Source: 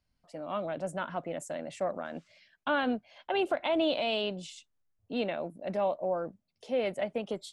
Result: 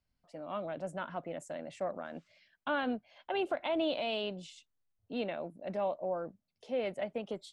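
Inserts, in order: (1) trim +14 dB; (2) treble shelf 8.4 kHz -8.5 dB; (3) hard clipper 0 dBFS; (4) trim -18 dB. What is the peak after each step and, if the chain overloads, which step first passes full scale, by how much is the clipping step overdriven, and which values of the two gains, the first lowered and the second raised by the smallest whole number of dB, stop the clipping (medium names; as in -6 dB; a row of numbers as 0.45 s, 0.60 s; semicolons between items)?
-3.5 dBFS, -4.0 dBFS, -4.0 dBFS, -22.0 dBFS; nothing clips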